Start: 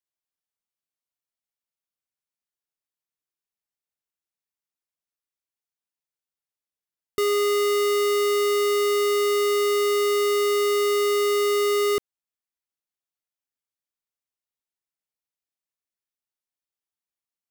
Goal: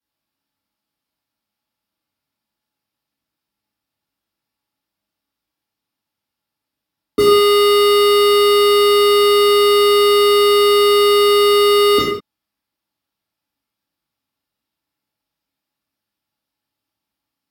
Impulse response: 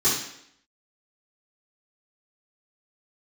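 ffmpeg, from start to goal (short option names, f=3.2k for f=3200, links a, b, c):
-filter_complex "[0:a]equalizer=f=7.6k:t=o:w=2:g=-9.5[a];[1:a]atrim=start_sample=2205,afade=t=out:st=0.21:d=0.01,atrim=end_sample=9702,asetrate=33075,aresample=44100[b];[a][b]afir=irnorm=-1:irlink=0"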